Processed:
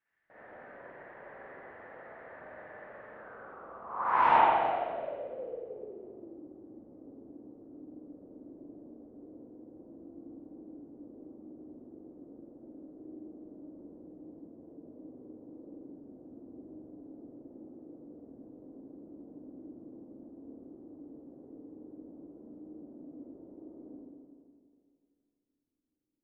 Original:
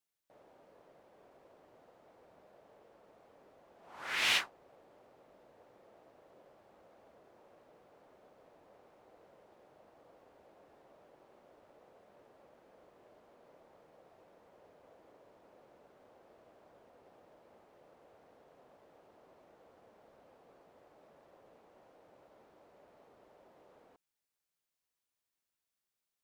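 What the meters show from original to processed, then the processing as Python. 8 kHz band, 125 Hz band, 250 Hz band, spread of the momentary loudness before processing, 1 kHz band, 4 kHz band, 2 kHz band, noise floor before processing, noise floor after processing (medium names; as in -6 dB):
under -25 dB, +11.5 dB, +20.0 dB, 18 LU, +20.5 dB, -13.0 dB, -0.5 dB, under -85 dBFS, -79 dBFS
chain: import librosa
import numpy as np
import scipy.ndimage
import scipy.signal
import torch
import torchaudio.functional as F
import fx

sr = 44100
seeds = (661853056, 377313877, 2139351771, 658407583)

y = fx.rev_spring(x, sr, rt60_s=2.3, pass_ms=(42, 51, 55), chirp_ms=55, drr_db=-8.5)
y = fx.filter_sweep_lowpass(y, sr, from_hz=1800.0, to_hz=290.0, start_s=3.07, end_s=6.52, q=6.7)
y = y * librosa.db_to_amplitude(1.5)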